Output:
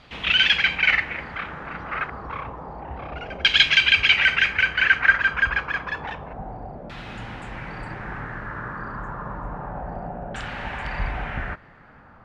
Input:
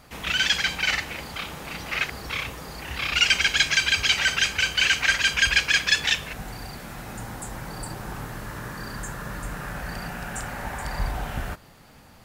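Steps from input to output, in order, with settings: LFO low-pass saw down 0.29 Hz 620–3500 Hz

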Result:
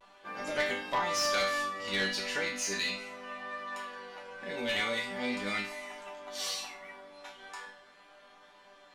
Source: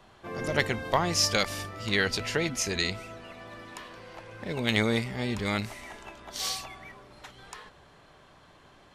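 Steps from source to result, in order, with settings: resonator bank G3 major, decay 0.39 s; overdrive pedal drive 16 dB, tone 4900 Hz, clips at -28.5 dBFS; vibrato 0.39 Hz 27 cents; gain +8 dB

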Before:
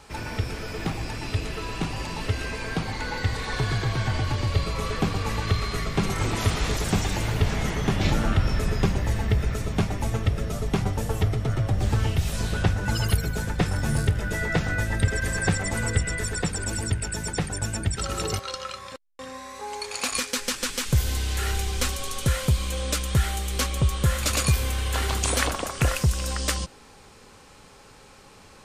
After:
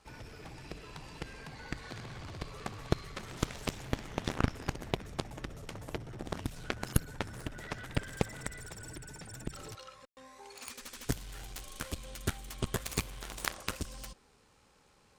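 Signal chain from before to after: granular stretch 0.53×, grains 26 ms; added harmonics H 3 -8 dB, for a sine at -9.5 dBFS

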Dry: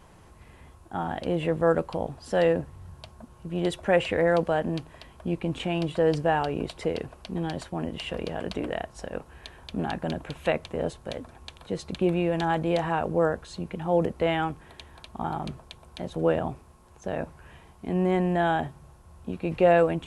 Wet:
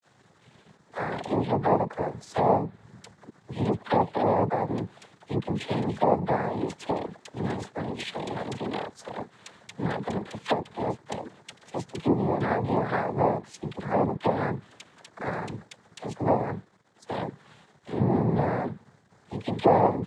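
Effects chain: dispersion lows, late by 48 ms, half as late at 630 Hz; treble ducked by the level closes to 660 Hz, closed at -20 dBFS; crossover distortion -56 dBFS; noise vocoder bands 6; gain +1 dB

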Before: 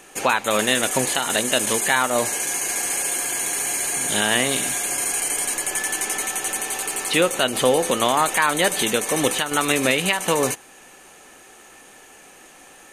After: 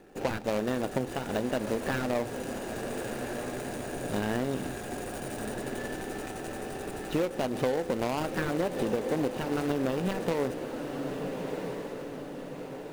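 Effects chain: median filter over 41 samples; on a send: diffused feedback echo 1.322 s, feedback 52%, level -10.5 dB; on the sum: compressor 6:1, threshold -25 dBFS, peak gain reduction 9.5 dB

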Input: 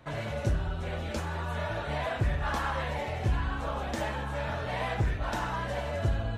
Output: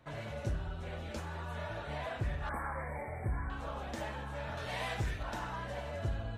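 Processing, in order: 2.49–3.5 brick-wall FIR band-stop 2400–7700 Hz; 4.57–5.23 high shelf 2700 Hz +11.5 dB; gain -7.5 dB

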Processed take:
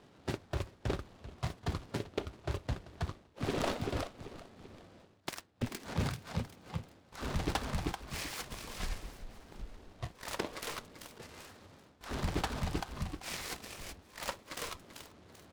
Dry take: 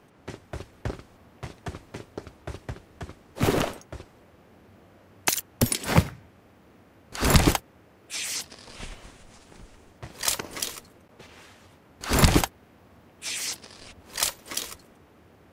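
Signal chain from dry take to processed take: feedback echo 0.389 s, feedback 45%, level -16 dB; spectral noise reduction 8 dB; reverse; compressor 20:1, threshold -35 dBFS, peak gain reduction 24.5 dB; reverse; LPF 2800 Hz 12 dB/oct; noise-modulated delay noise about 2300 Hz, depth 0.078 ms; gain +5 dB

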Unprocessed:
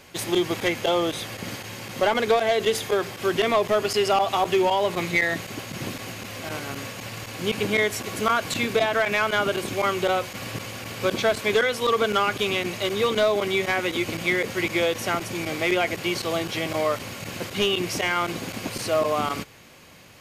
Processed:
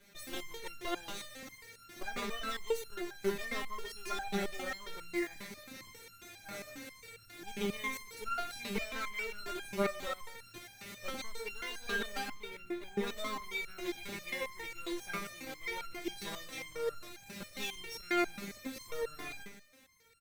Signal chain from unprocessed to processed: minimum comb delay 0.51 ms; 12.28–13.07 LPF 2300 Hz 12 dB/oct; in parallel at -3 dB: companded quantiser 4-bit; on the sum: echo 0.15 s -12.5 dB; stepped resonator 7.4 Hz 200–1400 Hz; gain -2.5 dB

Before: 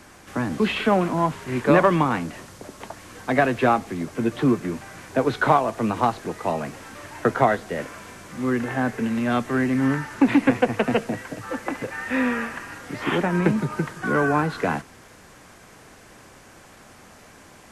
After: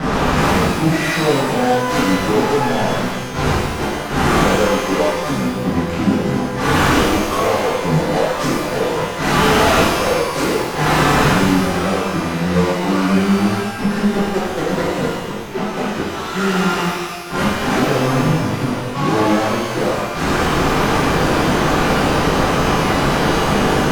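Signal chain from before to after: dynamic EQ 690 Hz, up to +8 dB, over -36 dBFS, Q 2.1; low-pass opened by the level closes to 1800 Hz, open at -17 dBFS; compressor, threshold -21 dBFS, peak gain reduction 13.5 dB; flipped gate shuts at -29 dBFS, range -25 dB; fuzz box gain 50 dB, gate -58 dBFS; speed mistake 45 rpm record played at 33 rpm; shimmer reverb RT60 1.2 s, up +12 st, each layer -8 dB, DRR -10 dB; gain -9 dB

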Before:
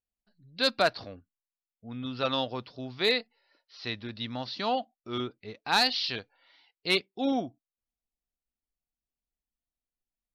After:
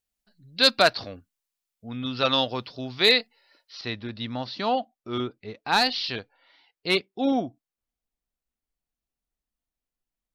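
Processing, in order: high shelf 2200 Hz +5.5 dB, from 3.81 s -4.5 dB; gain +4.5 dB

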